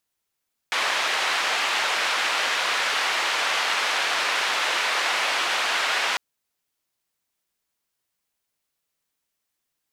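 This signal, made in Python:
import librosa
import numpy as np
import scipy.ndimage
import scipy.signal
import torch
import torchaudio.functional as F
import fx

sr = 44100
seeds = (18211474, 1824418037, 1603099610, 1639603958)

y = fx.band_noise(sr, seeds[0], length_s=5.45, low_hz=720.0, high_hz=2800.0, level_db=-24.0)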